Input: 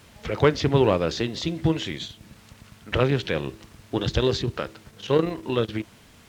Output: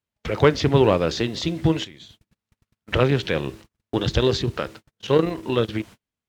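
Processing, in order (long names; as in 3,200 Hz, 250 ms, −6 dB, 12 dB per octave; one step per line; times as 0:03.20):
noise gate −41 dBFS, range −40 dB
0:01.84–0:02.91: downward compressor 16 to 1, threshold −42 dBFS, peak gain reduction 16.5 dB
level +2.5 dB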